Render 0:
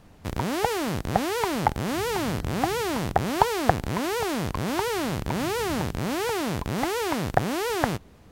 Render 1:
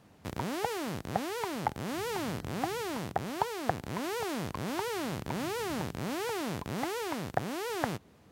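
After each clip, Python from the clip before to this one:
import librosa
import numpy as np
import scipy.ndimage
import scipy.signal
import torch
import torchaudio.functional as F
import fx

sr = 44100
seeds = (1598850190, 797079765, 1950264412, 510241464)

y = scipy.signal.sosfilt(scipy.signal.butter(2, 100.0, 'highpass', fs=sr, output='sos'), x)
y = fx.rider(y, sr, range_db=3, speed_s=0.5)
y = y * 10.0 ** (-8.0 / 20.0)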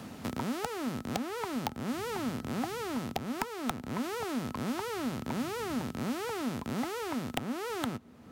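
y = (np.mod(10.0 ** (15.0 / 20.0) * x + 1.0, 2.0) - 1.0) / 10.0 ** (15.0 / 20.0)
y = fx.small_body(y, sr, hz=(240.0, 1300.0), ring_ms=85, db=11)
y = fx.band_squash(y, sr, depth_pct=70)
y = y * 10.0 ** (-3.0 / 20.0)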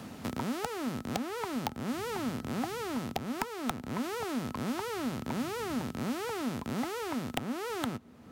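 y = x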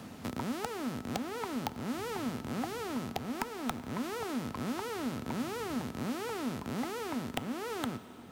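y = fx.rev_plate(x, sr, seeds[0], rt60_s=4.9, hf_ratio=0.85, predelay_ms=0, drr_db=12.5)
y = y * 10.0 ** (-2.0 / 20.0)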